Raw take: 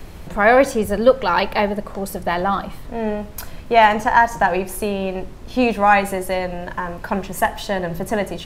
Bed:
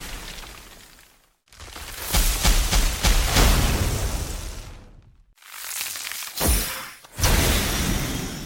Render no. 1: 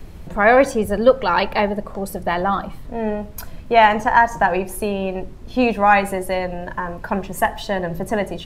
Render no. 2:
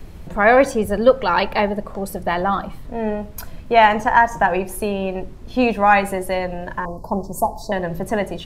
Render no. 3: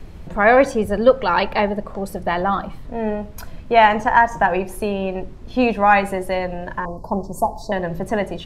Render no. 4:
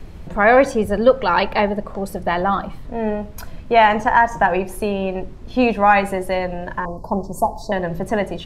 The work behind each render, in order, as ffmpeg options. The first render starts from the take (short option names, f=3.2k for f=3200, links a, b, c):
-af "afftdn=nr=6:nf=-36"
-filter_complex "[0:a]asettb=1/sr,asplit=3[a][b][c];[a]atrim=end=4.094[d];[b]atrim=start=4.09:end=4.6,asetpts=PTS-STARTPTS,afade=t=in:d=0.004:c=qsin,afade=t=out:st=0.506:d=0.004:c=qsin,bandreject=f=4.4k:w=8.7[e];[c]atrim=start=4.596[f];[d][e]acrossfade=d=0.004:c1=hsin:c2=qsin[g];[g][f]acrossfade=d=0.004:c1=qsin:c2=hsin,asettb=1/sr,asplit=3[h][i][j];[h]atrim=end=6.854[k];[i]atrim=start=6.85:end=7.72,asetpts=PTS-STARTPTS,afade=t=in:d=0.004:c=qsin,afade=t=out:st=0.866:d=0.004:c=qsin,asuperstop=centerf=2200:order=12:qfactor=0.65[l];[j]atrim=start=7.716[m];[k][l]acrossfade=d=0.004:c1=hsin:c2=qsin[n];[n][m]acrossfade=d=0.004:c1=qsin:c2=hsin"
-af "highshelf=f=10k:g=-11"
-af "volume=1dB,alimiter=limit=-3dB:level=0:latency=1"